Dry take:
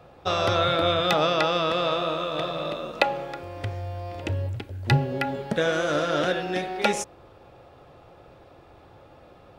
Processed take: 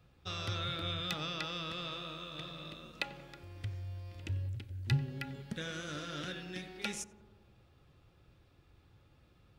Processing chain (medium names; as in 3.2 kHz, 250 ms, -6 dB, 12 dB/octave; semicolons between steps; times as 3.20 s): amplifier tone stack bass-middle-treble 6-0-2; on a send: tape echo 91 ms, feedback 84%, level -14 dB, low-pass 1.2 kHz; on the sum: trim +5.5 dB